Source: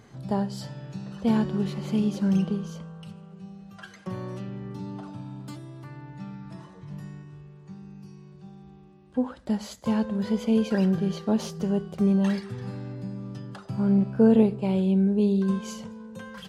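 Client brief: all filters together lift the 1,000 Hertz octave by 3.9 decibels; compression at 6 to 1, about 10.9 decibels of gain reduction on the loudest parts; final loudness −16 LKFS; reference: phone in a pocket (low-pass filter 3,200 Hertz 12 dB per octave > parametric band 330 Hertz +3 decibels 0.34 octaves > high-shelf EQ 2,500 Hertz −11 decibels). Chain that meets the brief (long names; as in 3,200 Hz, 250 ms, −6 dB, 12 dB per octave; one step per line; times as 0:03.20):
parametric band 1,000 Hz +6.5 dB
downward compressor 6 to 1, threshold −25 dBFS
low-pass filter 3,200 Hz 12 dB per octave
parametric band 330 Hz +3 dB 0.34 octaves
high-shelf EQ 2,500 Hz −11 dB
level +16 dB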